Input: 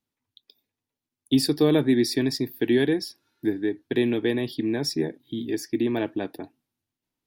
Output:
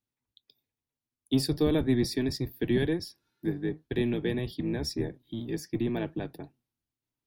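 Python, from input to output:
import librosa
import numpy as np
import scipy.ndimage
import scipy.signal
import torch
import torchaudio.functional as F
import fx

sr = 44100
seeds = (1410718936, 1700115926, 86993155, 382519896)

y = fx.octave_divider(x, sr, octaves=1, level_db=-1.0)
y = y * 10.0 ** (-6.5 / 20.0)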